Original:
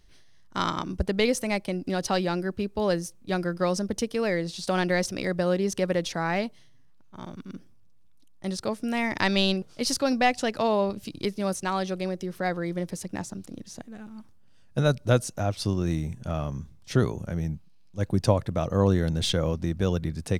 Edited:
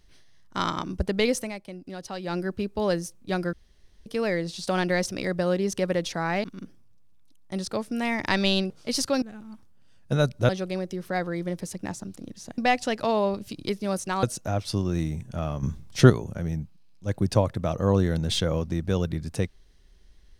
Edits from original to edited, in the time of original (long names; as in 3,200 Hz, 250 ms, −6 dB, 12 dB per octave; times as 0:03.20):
0:01.39–0:02.36: duck −10 dB, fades 0.14 s
0:03.53–0:04.06: fill with room tone
0:06.44–0:07.36: remove
0:10.14–0:11.79: swap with 0:13.88–0:15.15
0:16.55–0:17.02: clip gain +8 dB